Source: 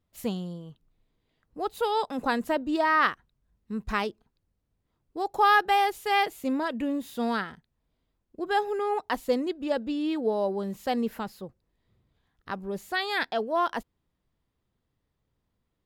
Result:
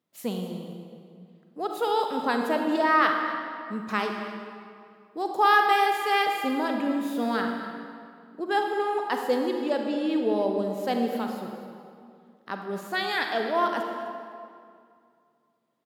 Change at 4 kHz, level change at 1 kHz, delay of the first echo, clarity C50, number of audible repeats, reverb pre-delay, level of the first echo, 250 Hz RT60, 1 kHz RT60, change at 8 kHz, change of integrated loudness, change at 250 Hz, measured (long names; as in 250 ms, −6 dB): +1.5 dB, +2.0 dB, 255 ms, 3.0 dB, 2, 35 ms, −15.0 dB, 2.5 s, 2.3 s, +1.5 dB, +1.5 dB, +2.5 dB